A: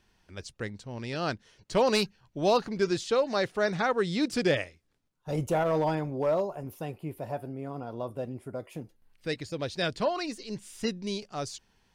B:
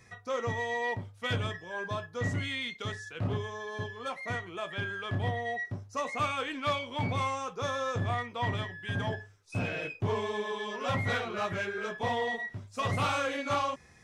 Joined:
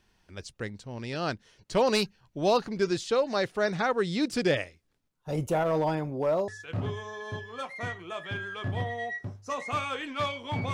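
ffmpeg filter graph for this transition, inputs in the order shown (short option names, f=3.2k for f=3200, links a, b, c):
-filter_complex "[0:a]apad=whole_dur=10.73,atrim=end=10.73,atrim=end=6.482[a];[1:a]atrim=start=2.948:end=7.2[b];[a][b]acrossfade=d=0.004:c1=hsin:c2=hsin"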